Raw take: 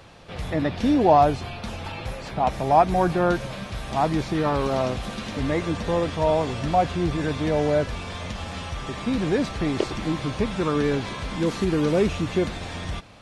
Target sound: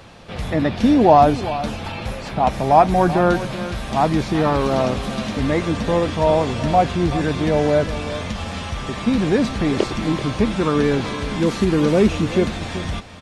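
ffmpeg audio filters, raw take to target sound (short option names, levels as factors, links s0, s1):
-af "equalizer=f=220:t=o:w=0.26:g=5.5,aecho=1:1:383:0.211,volume=1.68"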